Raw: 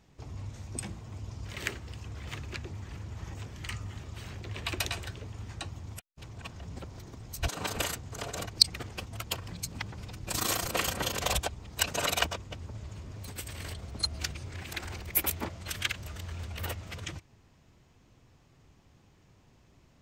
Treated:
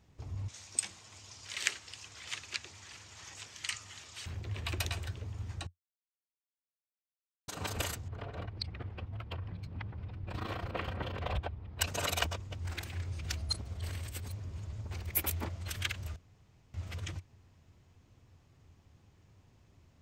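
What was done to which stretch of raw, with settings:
0:00.48–0:04.26: meter weighting curve ITU-R 468
0:05.67–0:07.48: silence
0:08.08–0:11.81: high-frequency loss of the air 410 metres
0:12.65–0:14.91: reverse
0:16.16–0:16.74: fill with room tone
whole clip: parametric band 88 Hz +9.5 dB 0.57 octaves; level −4.5 dB

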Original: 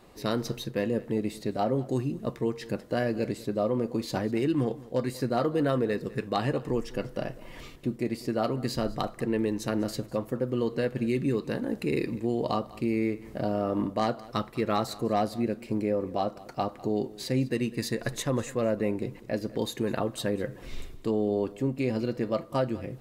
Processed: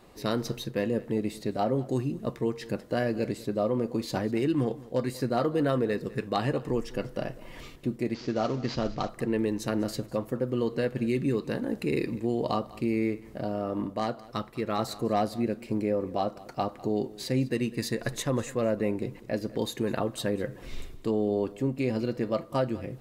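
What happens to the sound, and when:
0:08.14–0:09.09: variable-slope delta modulation 32 kbit/s
0:13.20–0:14.79: clip gain −3 dB

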